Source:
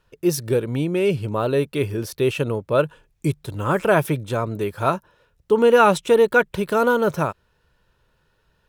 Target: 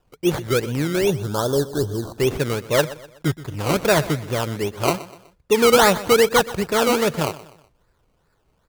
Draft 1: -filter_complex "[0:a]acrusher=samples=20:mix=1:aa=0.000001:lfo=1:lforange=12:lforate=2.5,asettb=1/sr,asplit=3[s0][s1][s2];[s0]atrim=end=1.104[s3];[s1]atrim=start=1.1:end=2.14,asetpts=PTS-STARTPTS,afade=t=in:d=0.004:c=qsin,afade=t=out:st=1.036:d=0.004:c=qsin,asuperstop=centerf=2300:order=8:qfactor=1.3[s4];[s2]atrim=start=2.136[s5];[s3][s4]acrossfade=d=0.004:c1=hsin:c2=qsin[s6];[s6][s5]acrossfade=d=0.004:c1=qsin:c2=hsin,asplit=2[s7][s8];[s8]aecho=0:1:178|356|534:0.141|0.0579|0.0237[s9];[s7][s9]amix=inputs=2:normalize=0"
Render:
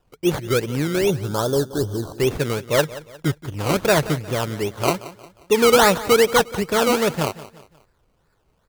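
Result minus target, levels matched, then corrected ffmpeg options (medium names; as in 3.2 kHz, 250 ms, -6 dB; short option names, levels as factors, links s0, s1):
echo 54 ms late
-filter_complex "[0:a]acrusher=samples=20:mix=1:aa=0.000001:lfo=1:lforange=12:lforate=2.5,asettb=1/sr,asplit=3[s0][s1][s2];[s0]atrim=end=1.104[s3];[s1]atrim=start=1.1:end=2.14,asetpts=PTS-STARTPTS,afade=t=in:d=0.004:c=qsin,afade=t=out:st=1.036:d=0.004:c=qsin,asuperstop=centerf=2300:order=8:qfactor=1.3[s4];[s2]atrim=start=2.136[s5];[s3][s4]acrossfade=d=0.004:c1=hsin:c2=qsin[s6];[s6][s5]acrossfade=d=0.004:c1=qsin:c2=hsin,asplit=2[s7][s8];[s8]aecho=0:1:124|248|372:0.141|0.0579|0.0237[s9];[s7][s9]amix=inputs=2:normalize=0"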